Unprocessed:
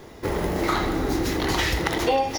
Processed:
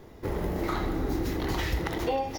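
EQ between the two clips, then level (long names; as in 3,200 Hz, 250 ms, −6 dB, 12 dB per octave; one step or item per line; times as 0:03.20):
spectral tilt −1.5 dB per octave
parametric band 15,000 Hz +14 dB 0.3 octaves
−8.0 dB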